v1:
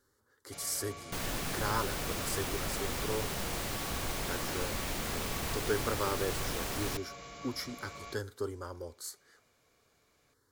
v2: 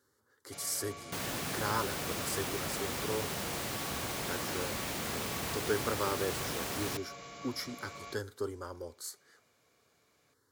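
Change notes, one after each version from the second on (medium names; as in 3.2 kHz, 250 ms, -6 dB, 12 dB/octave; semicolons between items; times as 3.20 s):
master: add high-pass 92 Hz 12 dB/octave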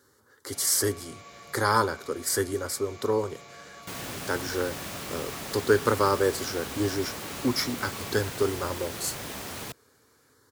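speech +11.0 dB; second sound: entry +2.75 s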